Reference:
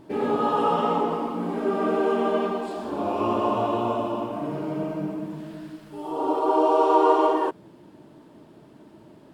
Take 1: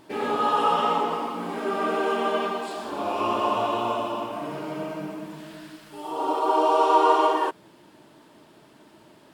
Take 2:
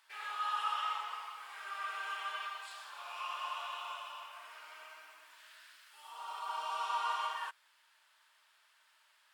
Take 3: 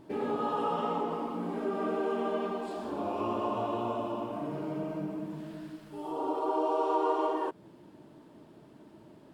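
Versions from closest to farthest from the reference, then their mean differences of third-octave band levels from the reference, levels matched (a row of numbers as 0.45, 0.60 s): 3, 1, 2; 2.0, 5.0, 17.0 dB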